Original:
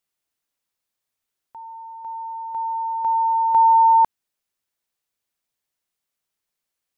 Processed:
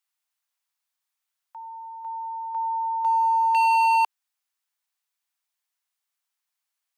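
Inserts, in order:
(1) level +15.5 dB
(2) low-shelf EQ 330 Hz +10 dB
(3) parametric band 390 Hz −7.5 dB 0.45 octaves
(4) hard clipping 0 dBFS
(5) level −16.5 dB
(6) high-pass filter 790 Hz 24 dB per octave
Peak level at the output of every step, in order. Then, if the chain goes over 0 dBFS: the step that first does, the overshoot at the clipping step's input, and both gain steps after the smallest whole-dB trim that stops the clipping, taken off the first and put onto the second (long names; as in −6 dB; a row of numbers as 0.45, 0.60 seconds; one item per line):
+5.5, +7.5, +7.0, 0.0, −16.5, −16.0 dBFS
step 1, 7.0 dB
step 1 +8.5 dB, step 5 −9.5 dB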